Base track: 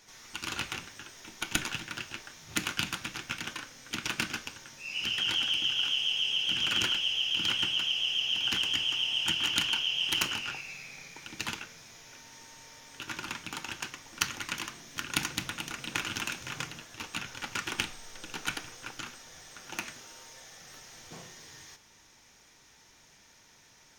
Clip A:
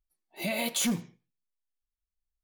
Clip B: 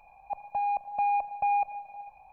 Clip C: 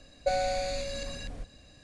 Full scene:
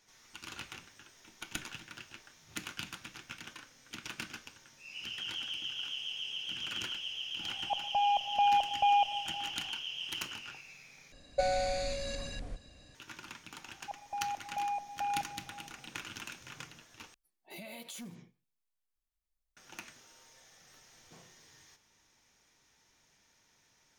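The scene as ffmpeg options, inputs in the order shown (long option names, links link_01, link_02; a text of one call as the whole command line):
ffmpeg -i bed.wav -i cue0.wav -i cue1.wav -i cue2.wav -filter_complex "[2:a]asplit=2[link_01][link_02];[0:a]volume=-10dB[link_03];[1:a]acompressor=threshold=-44dB:ratio=6:attack=3.2:release=140:knee=1:detection=peak[link_04];[link_03]asplit=3[link_05][link_06][link_07];[link_05]atrim=end=11.124[link_08];[3:a]atrim=end=1.83,asetpts=PTS-STARTPTS,volume=-2dB[link_09];[link_06]atrim=start=12.946:end=17.144[link_10];[link_04]atrim=end=2.43,asetpts=PTS-STARTPTS,volume=-0.5dB[link_11];[link_07]atrim=start=19.566[link_12];[link_01]atrim=end=2.32,asetpts=PTS-STARTPTS,afade=type=in:duration=0.004:curve=hsin,afade=type=out:start_time=2.316:duration=0.004:curve=hsin,adelay=7400[link_13];[link_02]atrim=end=2.32,asetpts=PTS-STARTPTS,volume=-8.5dB,afade=type=in:duration=0.004:curve=hsin,afade=type=out:start_time=2.316:duration=0.004:curve=hsin,adelay=13580[link_14];[link_08][link_09]acrossfade=duration=0.004:curve1=hsin:curve2=hsin[link_15];[link_15][link_10]acrossfade=duration=0.004:curve1=hsin:curve2=hsin[link_16];[link_16][link_11]acrossfade=duration=0.004:curve1=hsin:curve2=hsin[link_17];[link_17][link_12]acrossfade=duration=0.004:curve1=hsin:curve2=hsin[link_18];[link_18][link_13][link_14]amix=inputs=3:normalize=0" out.wav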